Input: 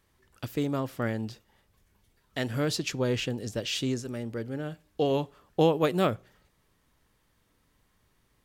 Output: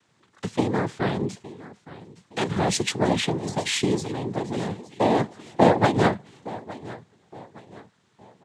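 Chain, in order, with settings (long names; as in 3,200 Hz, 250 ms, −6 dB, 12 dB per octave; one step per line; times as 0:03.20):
repeating echo 865 ms, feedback 39%, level −18 dB
cochlear-implant simulation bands 6
level +6 dB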